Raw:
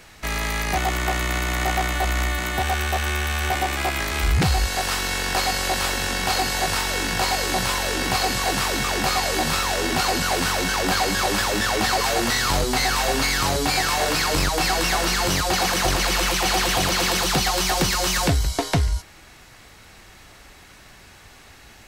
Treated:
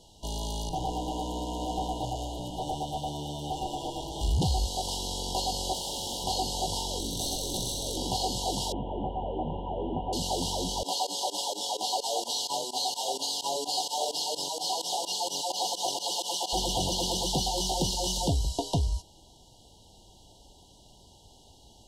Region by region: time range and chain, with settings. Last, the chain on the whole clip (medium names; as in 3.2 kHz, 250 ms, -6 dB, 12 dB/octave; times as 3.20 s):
0.69–4.21 s: comb filter that takes the minimum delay 6.4 ms + treble shelf 2.3 kHz -8 dB + echo whose repeats swap between lows and highs 109 ms, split 1.3 kHz, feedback 54%, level -3 dB
5.73–6.24 s: bass shelf 280 Hz -9.5 dB + Schmitt trigger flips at -37 dBFS
6.99–7.97 s: comb filter that takes the minimum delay 0.49 ms + integer overflow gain 16.5 dB + flutter echo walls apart 9.9 m, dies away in 0.41 s
8.72–10.13 s: one-bit delta coder 16 kbps, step -30 dBFS + low-pass 2.5 kHz
10.83–16.53 s: high-pass 490 Hz + comb 7 ms, depth 37% + volume shaper 128 bpm, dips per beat 2, -21 dB, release 76 ms
whole clip: low-pass 10 kHz 12 dB/octave; FFT band-reject 1–2.8 kHz; trim -6.5 dB